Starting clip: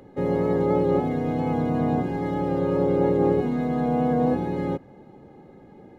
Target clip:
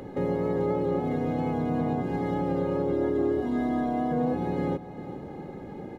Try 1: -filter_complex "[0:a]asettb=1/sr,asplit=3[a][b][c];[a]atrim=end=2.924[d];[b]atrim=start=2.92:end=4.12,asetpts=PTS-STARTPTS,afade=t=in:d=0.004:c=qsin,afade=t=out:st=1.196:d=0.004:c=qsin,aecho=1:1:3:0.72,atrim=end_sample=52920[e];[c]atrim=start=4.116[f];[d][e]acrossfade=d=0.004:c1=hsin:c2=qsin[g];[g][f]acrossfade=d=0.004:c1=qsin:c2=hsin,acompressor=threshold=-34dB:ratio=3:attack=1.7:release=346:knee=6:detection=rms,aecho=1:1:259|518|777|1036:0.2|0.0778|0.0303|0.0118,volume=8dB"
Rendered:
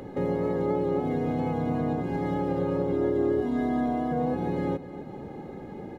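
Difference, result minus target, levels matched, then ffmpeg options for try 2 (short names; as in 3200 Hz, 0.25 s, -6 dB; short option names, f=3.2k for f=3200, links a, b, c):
echo 0.141 s early
-filter_complex "[0:a]asettb=1/sr,asplit=3[a][b][c];[a]atrim=end=2.924[d];[b]atrim=start=2.92:end=4.12,asetpts=PTS-STARTPTS,afade=t=in:d=0.004:c=qsin,afade=t=out:st=1.196:d=0.004:c=qsin,aecho=1:1:3:0.72,atrim=end_sample=52920[e];[c]atrim=start=4.116[f];[d][e]acrossfade=d=0.004:c1=hsin:c2=qsin[g];[g][f]acrossfade=d=0.004:c1=qsin:c2=hsin,acompressor=threshold=-34dB:ratio=3:attack=1.7:release=346:knee=6:detection=rms,aecho=1:1:400|800|1200|1600:0.2|0.0778|0.0303|0.0118,volume=8dB"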